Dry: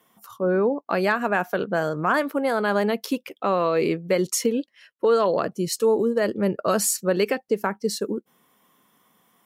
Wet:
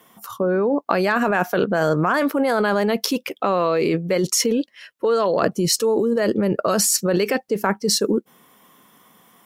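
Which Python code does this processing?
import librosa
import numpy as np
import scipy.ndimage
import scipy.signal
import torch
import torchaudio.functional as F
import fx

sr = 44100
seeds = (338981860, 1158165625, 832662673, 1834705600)

p1 = fx.dynamic_eq(x, sr, hz=5500.0, q=2.8, threshold_db=-49.0, ratio=4.0, max_db=5)
p2 = fx.over_compress(p1, sr, threshold_db=-26.0, ratio=-0.5)
p3 = p1 + F.gain(torch.from_numpy(p2), 2.0).numpy()
y = F.gain(torch.from_numpy(p3), -1.0).numpy()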